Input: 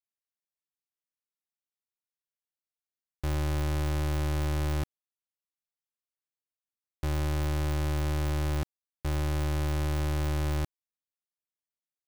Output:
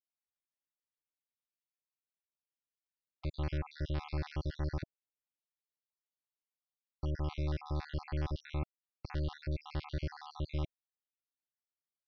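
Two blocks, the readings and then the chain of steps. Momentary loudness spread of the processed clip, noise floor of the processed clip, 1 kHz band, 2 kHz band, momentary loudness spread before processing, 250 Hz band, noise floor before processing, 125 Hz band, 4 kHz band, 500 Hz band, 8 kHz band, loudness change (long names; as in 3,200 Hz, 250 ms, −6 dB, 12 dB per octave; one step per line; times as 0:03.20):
6 LU, below −85 dBFS, −9.0 dB, −10.0 dB, 5 LU, −8.0 dB, below −85 dBFS, −8.5 dB, −9.0 dB, −8.5 dB, below −20 dB, −8.5 dB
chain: time-frequency cells dropped at random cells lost 58%
Butterworth low-pass 5,400 Hz 72 dB per octave
level −4.5 dB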